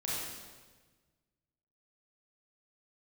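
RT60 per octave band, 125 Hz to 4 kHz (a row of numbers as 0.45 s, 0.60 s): 2.0 s, 1.6 s, 1.5 s, 1.3 s, 1.3 s, 1.2 s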